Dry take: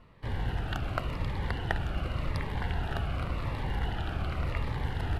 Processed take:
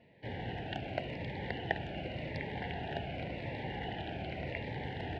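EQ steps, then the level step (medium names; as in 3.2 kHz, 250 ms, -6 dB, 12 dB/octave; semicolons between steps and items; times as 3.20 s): band-pass 130–3000 Hz; Chebyshev band-stop 760–1900 Hz, order 2; bass shelf 260 Hz -4.5 dB; +1.5 dB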